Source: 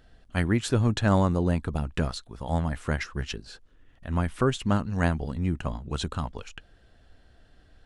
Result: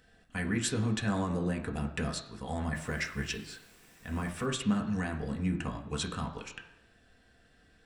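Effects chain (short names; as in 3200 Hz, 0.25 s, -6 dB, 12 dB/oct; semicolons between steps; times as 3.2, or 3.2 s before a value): limiter -18 dBFS, peak gain reduction 9 dB; 2.74–4.45 added noise pink -58 dBFS; reverb RT60 0.95 s, pre-delay 3 ms, DRR 1.5 dB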